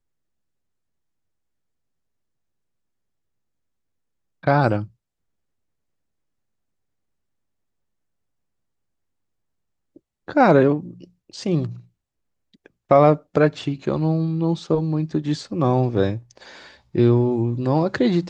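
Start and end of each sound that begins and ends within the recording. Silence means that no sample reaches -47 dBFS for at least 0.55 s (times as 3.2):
4.43–4.88
9.96–11.85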